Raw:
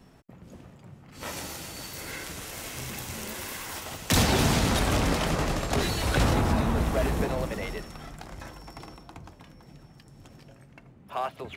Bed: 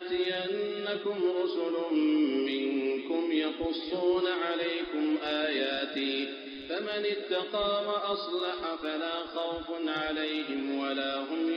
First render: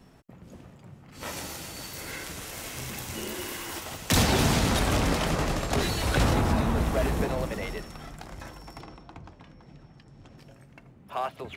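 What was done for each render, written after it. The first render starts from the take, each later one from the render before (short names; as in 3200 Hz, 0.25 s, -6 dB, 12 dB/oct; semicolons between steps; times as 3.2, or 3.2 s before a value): 3.14–3.78 small resonant body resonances 340/2900 Hz, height 12 dB -> 9 dB; 8.81–10.38 air absorption 92 m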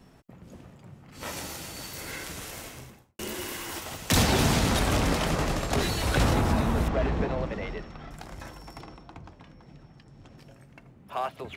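2.45–3.19 studio fade out; 6.88–8.11 air absorption 170 m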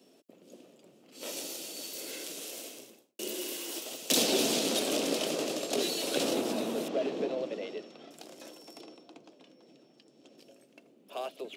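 HPF 280 Hz 24 dB/oct; band shelf 1300 Hz -13 dB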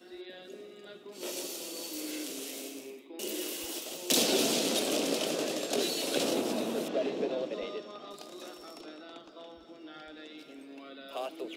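add bed -16 dB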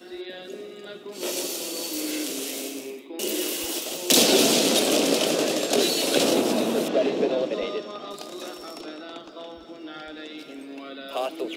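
gain +9 dB; limiter -2 dBFS, peak gain reduction 1 dB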